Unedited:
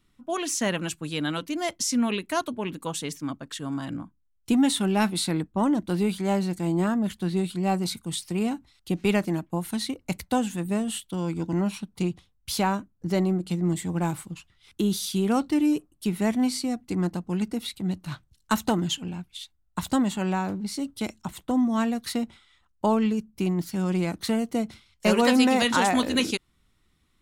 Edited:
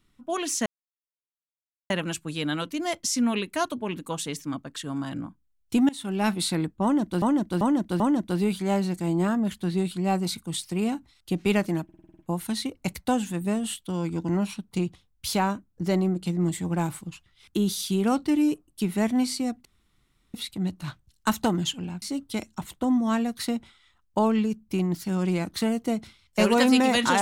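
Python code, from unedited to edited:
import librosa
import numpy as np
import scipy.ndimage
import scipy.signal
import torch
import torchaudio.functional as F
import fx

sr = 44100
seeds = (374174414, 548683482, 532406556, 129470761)

y = fx.edit(x, sr, fx.insert_silence(at_s=0.66, length_s=1.24),
    fx.fade_in_from(start_s=4.65, length_s=0.44, floor_db=-21.5),
    fx.repeat(start_s=5.59, length_s=0.39, count=4),
    fx.stutter(start_s=9.43, slice_s=0.05, count=8),
    fx.room_tone_fill(start_s=16.89, length_s=0.69),
    fx.cut(start_s=19.26, length_s=1.43), tone=tone)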